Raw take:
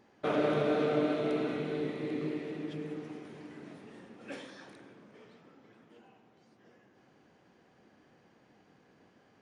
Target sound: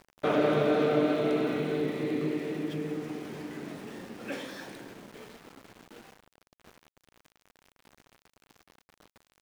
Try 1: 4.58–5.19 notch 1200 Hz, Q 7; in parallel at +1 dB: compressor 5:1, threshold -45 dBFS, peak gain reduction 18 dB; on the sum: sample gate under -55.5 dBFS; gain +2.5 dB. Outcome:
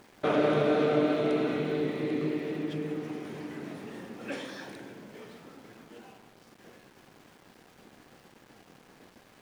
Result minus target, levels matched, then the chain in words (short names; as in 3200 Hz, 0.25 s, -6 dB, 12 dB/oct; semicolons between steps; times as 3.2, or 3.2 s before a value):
sample gate: distortion -6 dB
4.58–5.19 notch 1200 Hz, Q 7; in parallel at +1 dB: compressor 5:1, threshold -45 dBFS, peak gain reduction 18 dB; on the sum: sample gate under -49.5 dBFS; gain +2.5 dB